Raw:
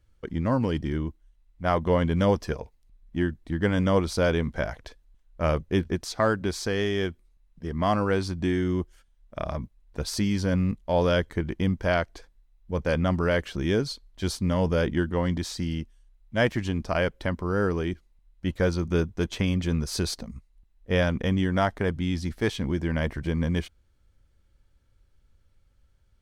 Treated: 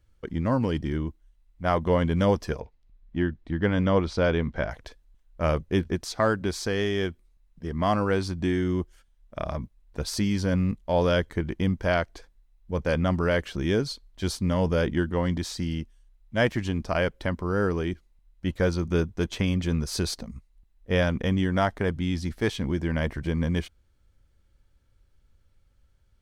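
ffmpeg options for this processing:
ffmpeg -i in.wav -filter_complex "[0:a]asettb=1/sr,asplit=3[link_01][link_02][link_03];[link_01]atrim=end=2.614[link_04];[link_02]atrim=start=2.61:end=4.71,asetpts=PTS-STARTPTS,afade=type=in:duration=0.004:curve=qsin,afade=type=out:start_time=2.096:duration=0.004:curve=qsin,lowpass=4200[link_05];[link_03]atrim=start=4.706[link_06];[link_04][link_05]acrossfade=duration=0.004:curve1=hsin:curve2=qsin[link_07];[link_07][link_06]acrossfade=duration=0.004:curve1=qsin:curve2=hsin" out.wav

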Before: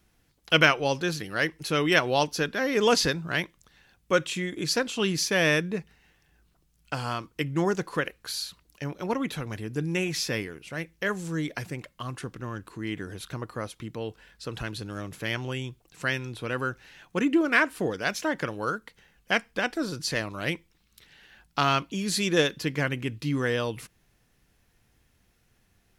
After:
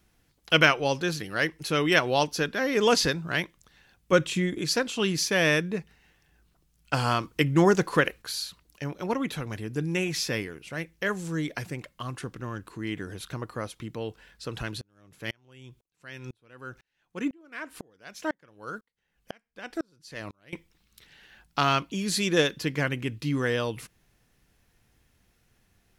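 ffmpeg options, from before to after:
ffmpeg -i in.wav -filter_complex "[0:a]asettb=1/sr,asplit=3[link_01][link_02][link_03];[link_01]atrim=end=4.124[link_04];[link_02]atrim=start=4.12:end=4.58,asetpts=PTS-STARTPTS,afade=type=in:duration=0.004:curve=qsin,afade=type=out:start_time=0.456:duration=0.004:curve=qsin,lowshelf=frequency=340:gain=8[link_05];[link_03]atrim=start=4.576[link_06];[link_04][link_05]acrossfade=duration=0.004:curve1=hsin:curve2=qsin[link_07];[link_07][link_06]acrossfade=duration=0.004:curve1=qsin:curve2=hsin,asettb=1/sr,asplit=3[link_08][link_09][link_10];[link_08]atrim=end=6.934[link_11];[link_09]atrim=start=6.93:end=8.22,asetpts=PTS-STARTPTS,afade=type=in:duration=0.004:curve=qsin,afade=type=out:start_time=1.286:duration=0.004:curve=qsin,acontrast=49[link_12];[link_10]atrim=start=8.216[link_13];[link_11][link_12]acrossfade=duration=0.004:curve1=hsin:curve2=qsin[link_14];[link_14][link_13]acrossfade=duration=0.004:curve1=qsin:curve2=hsin,asettb=1/sr,asplit=3[link_15][link_16][link_17];[link_15]atrim=end=14.814[link_18];[link_16]atrim=start=14.81:end=20.53,asetpts=PTS-STARTPTS,afade=type=in:duration=0.004:curve=qsin,afade=type=out:start_time=5.716:duration=0.004:curve=qsin,aeval=exprs='val(0)*pow(10,-38*if(lt(mod(-2*n/s,1),2*abs(-2)/1000),1-mod(-2*n/s,1)/(2*abs(-2)/1000),(mod(-2*n/s,1)-2*abs(-2)/1000)/(1-2*abs(-2)/1000))/20)':channel_layout=same[link_19];[link_17]atrim=start=20.526[link_20];[link_18][link_19]acrossfade=duration=0.004:curve1=hsin:curve2=qsin[link_21];[link_21][link_20]acrossfade=duration=0.004:curve1=qsin:curve2=hsin" out.wav

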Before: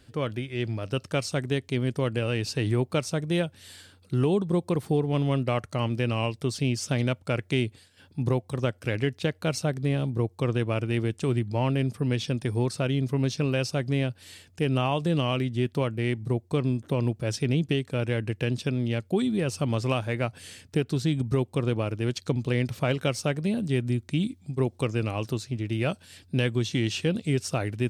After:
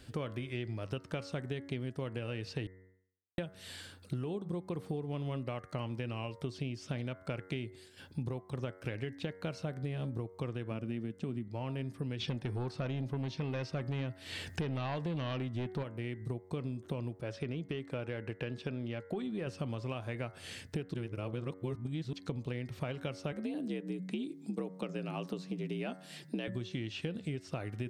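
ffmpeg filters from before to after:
ffmpeg -i in.wav -filter_complex "[0:a]asettb=1/sr,asplit=3[link_01][link_02][link_03];[link_01]atrim=end=10.714[link_04];[link_02]atrim=start=10.71:end=11.48,asetpts=PTS-STARTPTS,afade=type=in:duration=0.004:curve=qsin,afade=type=out:start_time=0.766:duration=0.004:curve=qsin,equalizer=frequency=220:width=1.5:gain=11[link_05];[link_03]atrim=start=11.476[link_06];[link_04][link_05]acrossfade=duration=0.004:curve1=hsin:curve2=qsin[link_07];[link_07][link_06]acrossfade=duration=0.004:curve1=qsin:curve2=hsin,asplit=3[link_08][link_09][link_10];[link_08]afade=type=out:start_time=12.19:duration=0.02[link_11];[link_09]aeval=exprs='0.224*sin(PI/2*2*val(0)/0.224)':channel_layout=same,afade=type=in:start_time=12.19:duration=0.02,afade=type=out:start_time=15.82:duration=0.02[link_12];[link_10]afade=type=in:start_time=15.82:duration=0.02[link_13];[link_11][link_12][link_13]amix=inputs=3:normalize=0,asettb=1/sr,asplit=3[link_14][link_15][link_16];[link_14]atrim=end=17.214[link_17];[link_15]atrim=start=17.21:end=19.47,asetpts=PTS-STARTPTS,afade=type=in:duration=0.004:curve=qsin,afade=type=out:start_time=2.256:duration=0.004:curve=qsin,asplit=2[link_18][link_19];[link_19]highpass=frequency=720:poles=1,volume=8dB,asoftclip=type=tanh:threshold=-14dB[link_20];[link_18][link_20]amix=inputs=2:normalize=0,lowpass=frequency=1500:poles=1,volume=-6dB[link_21];[link_16]atrim=start=19.466[link_22];[link_17][link_21]acrossfade=duration=0.004:curve1=hsin:curve2=qsin[link_23];[link_23][link_22]acrossfade=duration=0.004:curve1=qsin:curve2=hsin,asettb=1/sr,asplit=3[link_24][link_25][link_26];[link_24]atrim=end=23.324[link_27];[link_25]atrim=start=23.32:end=26.48,asetpts=PTS-STARTPTS,afade=type=in:duration=0.004:curve=qsin,afade=type=out:start_time=3.156:duration=0.004:curve=qsin,afreqshift=63[link_28];[link_26]atrim=start=26.476[link_29];[link_27][link_28]acrossfade=duration=0.004:curve1=hsin:curve2=qsin[link_30];[link_30][link_29]acrossfade=duration=0.004:curve1=qsin:curve2=hsin,asplit=5[link_31][link_32][link_33][link_34][link_35];[link_31]atrim=end=2.67,asetpts=PTS-STARTPTS,afade=type=out:start_time=2.666:duration=0.004:curve=hsin[link_36];[link_32]atrim=start=2.67:end=3.38,asetpts=PTS-STARTPTS,volume=0[link_37];[link_33]atrim=start=3.38:end=20.942,asetpts=PTS-STARTPTS,afade=type=in:duration=0.004:curve=hsin[link_38];[link_34]atrim=start=20.938:end=22.132,asetpts=PTS-STARTPTS,areverse[link_39];[link_35]atrim=start=22.128[link_40];[link_36][link_37][link_38]concat=n=3:v=0:a=1[link_41];[link_41][link_39]acrossfade=duration=0.004:curve1=hsin:curve2=hsin[link_42];[link_42][link_40]acrossfade=duration=0.004:curve1=hsin:curve2=hsin,acrossover=split=4300[link_43][link_44];[link_44]acompressor=threshold=-54dB:ratio=4:attack=1:release=60[link_45];[link_43][link_45]amix=inputs=2:normalize=0,bandreject=frequency=93.19:width_type=h:width=4,bandreject=frequency=186.38:width_type=h:width=4,bandreject=frequency=279.57:width_type=h:width=4,bandreject=frequency=372.76:width_type=h:width=4,bandreject=frequency=465.95:width_type=h:width=4,bandreject=frequency=559.14:width_type=h:width=4,bandreject=frequency=652.33:width_type=h:width=4,bandreject=frequency=745.52:width_type=h:width=4,bandreject=frequency=838.71:width_type=h:width=4,bandreject=frequency=931.9:width_type=h:width=4,bandreject=frequency=1025.09:width_type=h:width=4,bandreject=frequency=1118.28:width_type=h:width=4,bandreject=frequency=1211.47:width_type=h:width=4,bandreject=frequency=1304.66:width_type=h:width=4,bandreject=frequency=1397.85:width_type=h:width=4,bandreject=frequency=1491.04:width_type=h:width=4,bandreject=frequency=1584.23:width_type=h:width=4,bandreject=frequency=1677.42:width_type=h:width=4,bandreject=frequency=1770.61:width_type=h:width=4,bandreject=frequency=1863.8:width_type=h:width=4,bandreject=frequency=1956.99:width_type=h:width=4,bandreject=frequency=2050.18:width_type=h:width=4,bandreject=frequency=2143.37:width_type=h:width=4,acompressor=threshold=-36dB:ratio=16,volume=2dB" out.wav

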